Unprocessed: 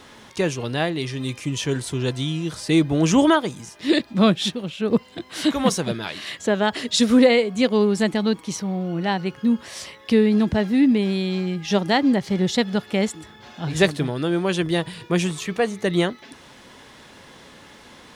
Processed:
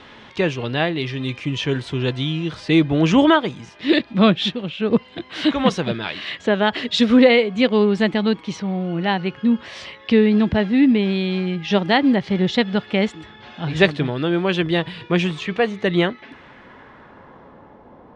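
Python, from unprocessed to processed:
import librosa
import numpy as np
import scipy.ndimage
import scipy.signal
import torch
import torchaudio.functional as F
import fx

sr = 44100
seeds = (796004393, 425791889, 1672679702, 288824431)

y = fx.filter_sweep_lowpass(x, sr, from_hz=3100.0, to_hz=790.0, start_s=15.87, end_s=17.83, q=1.3)
y = y * 10.0 ** (2.0 / 20.0)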